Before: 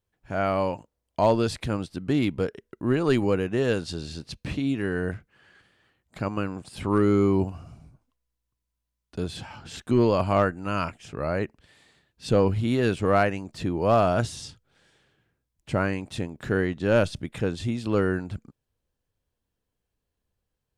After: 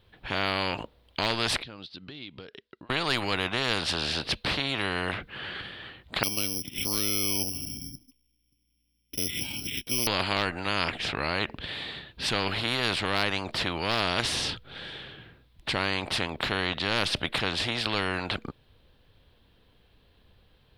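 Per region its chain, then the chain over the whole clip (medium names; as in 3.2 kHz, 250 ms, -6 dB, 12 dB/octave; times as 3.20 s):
1.62–2.90 s: band-pass filter 5.1 kHz, Q 2.6 + tilt EQ -4 dB/octave + compression 12:1, threshold -59 dBFS
6.23–10.07 s: cascade formant filter i + careless resampling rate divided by 8×, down none, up zero stuff
whole clip: resonant high shelf 5 kHz -11 dB, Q 3; spectrum-flattening compressor 4:1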